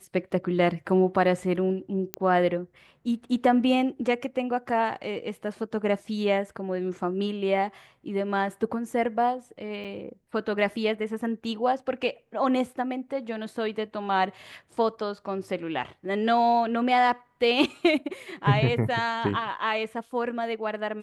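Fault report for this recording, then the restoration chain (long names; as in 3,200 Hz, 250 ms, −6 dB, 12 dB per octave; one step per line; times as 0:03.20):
0:02.14: click −11 dBFS
0:09.84–0:09.85: drop-out 6.6 ms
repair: click removal
repair the gap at 0:09.84, 6.6 ms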